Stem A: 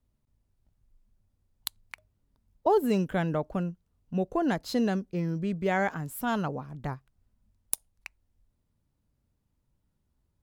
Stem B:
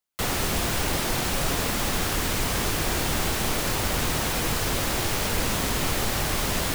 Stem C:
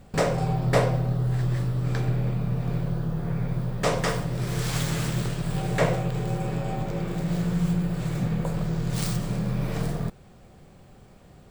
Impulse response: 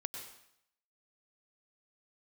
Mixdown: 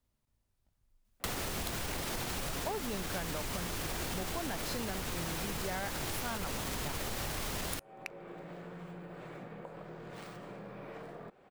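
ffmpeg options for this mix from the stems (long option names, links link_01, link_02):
-filter_complex "[0:a]lowshelf=frequency=470:gain=-9,asoftclip=type=tanh:threshold=-20dB,volume=2dB,asplit=2[link_01][link_02];[1:a]alimiter=limit=-20dB:level=0:latency=1:release=83,adelay=1050,volume=0dB[link_03];[2:a]acrossover=split=270 2800:gain=0.0708 1 0.141[link_04][link_05][link_06];[link_04][link_05][link_06]amix=inputs=3:normalize=0,acompressor=threshold=-41dB:ratio=6,adelay=1200,volume=-2.5dB[link_07];[link_02]apad=whole_len=560227[link_08];[link_07][link_08]sidechaincompress=threshold=-36dB:ratio=8:attack=6.1:release=442[link_09];[link_01][link_03][link_09]amix=inputs=3:normalize=0,acompressor=threshold=-34dB:ratio=6"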